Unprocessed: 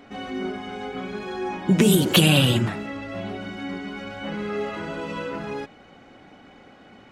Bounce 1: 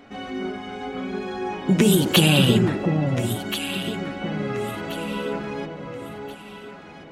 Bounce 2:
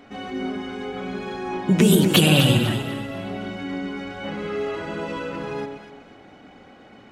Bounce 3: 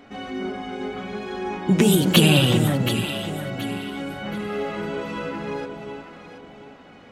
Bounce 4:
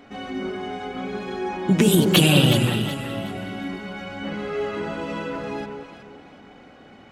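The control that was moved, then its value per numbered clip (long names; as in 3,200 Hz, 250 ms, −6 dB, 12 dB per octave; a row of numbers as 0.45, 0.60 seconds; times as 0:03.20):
delay that swaps between a low-pass and a high-pass, delay time: 690, 122, 363, 185 milliseconds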